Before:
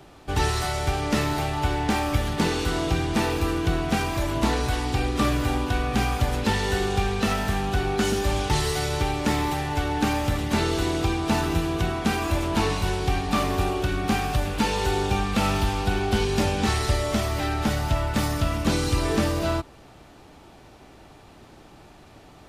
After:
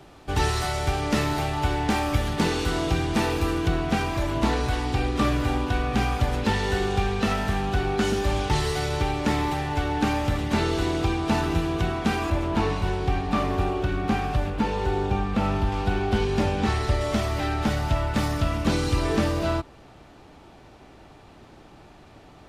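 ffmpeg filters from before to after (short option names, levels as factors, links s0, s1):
-af "asetnsamples=n=441:p=0,asendcmd='3.68 lowpass f 4700;12.3 lowpass f 2000;14.5 lowpass f 1200;15.72 lowpass f 2400;17.01 lowpass f 5000',lowpass=f=11000:p=1"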